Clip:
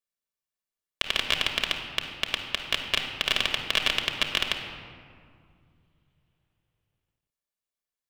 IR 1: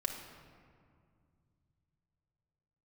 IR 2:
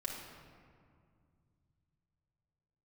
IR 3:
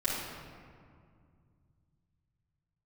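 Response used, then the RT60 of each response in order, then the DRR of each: 1; 2.2, 2.2, 2.2 s; 3.0, -1.5, -8.5 dB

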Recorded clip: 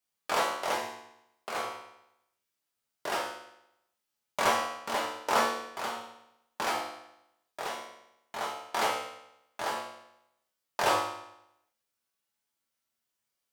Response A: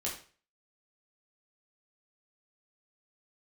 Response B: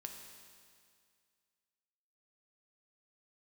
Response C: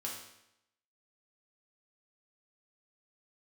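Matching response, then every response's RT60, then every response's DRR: C; 0.40, 2.1, 0.80 s; -4.0, 3.0, -3.0 dB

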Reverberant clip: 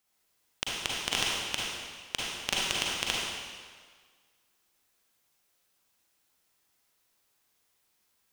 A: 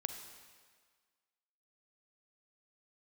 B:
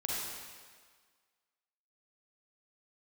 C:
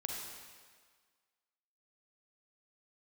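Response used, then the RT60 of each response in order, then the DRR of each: B; 1.6, 1.6, 1.6 s; 6.5, -5.0, -0.5 dB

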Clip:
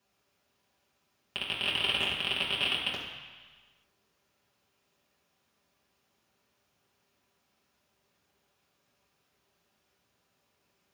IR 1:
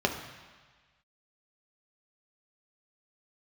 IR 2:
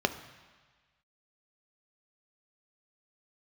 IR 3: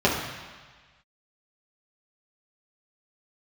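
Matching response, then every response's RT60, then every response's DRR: 3; 1.4, 1.4, 1.4 s; 2.5, 8.5, -5.5 dB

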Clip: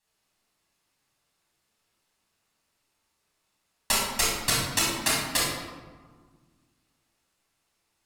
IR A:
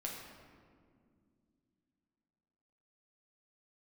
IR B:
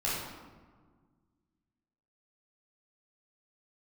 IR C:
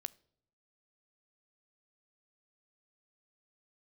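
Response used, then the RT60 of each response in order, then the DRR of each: B; 2.2 s, 1.6 s, not exponential; -2.5, -7.5, 17.0 dB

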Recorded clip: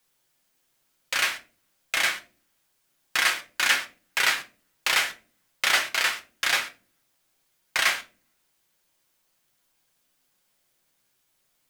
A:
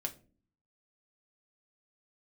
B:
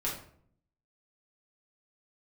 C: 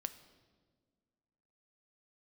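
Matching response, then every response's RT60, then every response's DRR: A; not exponential, 0.60 s, 1.7 s; 2.5, -6.5, 10.5 dB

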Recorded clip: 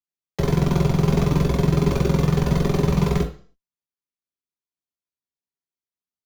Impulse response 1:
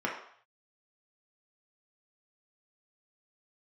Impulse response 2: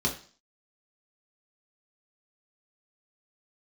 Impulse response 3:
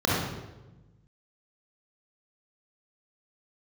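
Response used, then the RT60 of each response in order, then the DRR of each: 2; 0.60, 0.40, 1.1 s; -3.0, -1.5, -6.0 dB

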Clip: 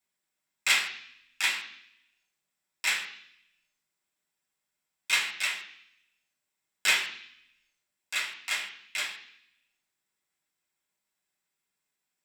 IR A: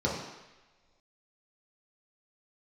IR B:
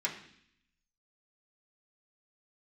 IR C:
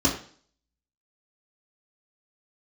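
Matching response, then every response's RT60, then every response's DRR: B; not exponential, 0.65 s, 0.45 s; -5.5, -5.0, -6.0 dB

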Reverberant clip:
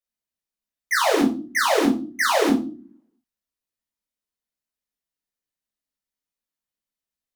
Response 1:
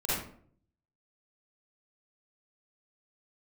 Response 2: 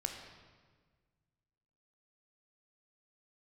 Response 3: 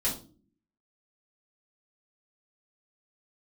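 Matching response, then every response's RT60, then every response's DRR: 3; 0.55, 1.5, 0.40 s; -11.0, 3.5, -8.0 dB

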